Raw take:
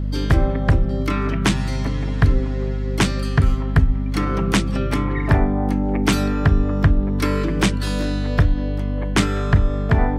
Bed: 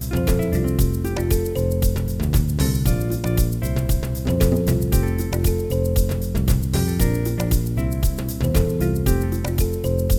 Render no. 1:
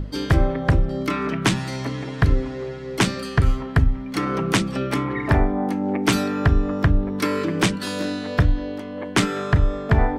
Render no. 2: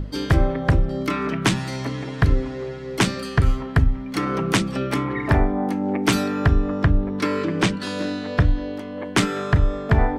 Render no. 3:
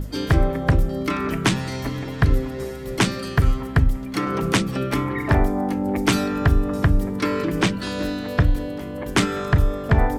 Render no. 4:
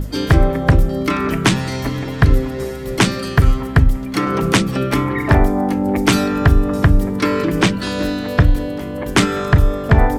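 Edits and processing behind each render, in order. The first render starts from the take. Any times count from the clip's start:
notches 50/100/150/200/250 Hz
6.55–8.45 air absorption 51 m
add bed -17 dB
gain +5.5 dB; limiter -2 dBFS, peak gain reduction 1 dB

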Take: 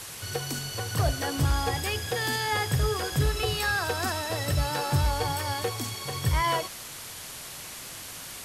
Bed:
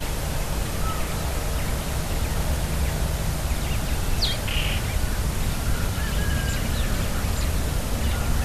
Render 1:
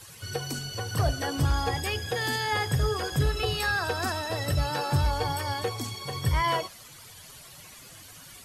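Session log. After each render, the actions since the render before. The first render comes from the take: denoiser 12 dB, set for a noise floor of -41 dBFS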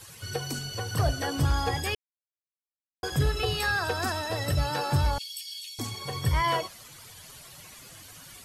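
1.95–3.03 mute; 5.18–5.79 steep high-pass 2700 Hz 48 dB/oct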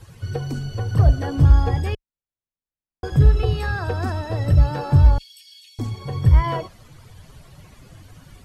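tilt -3.5 dB/oct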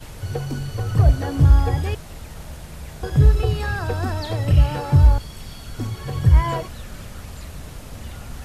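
add bed -11.5 dB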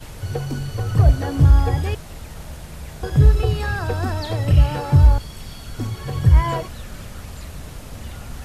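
gain +1 dB; limiter -3 dBFS, peak gain reduction 1.5 dB

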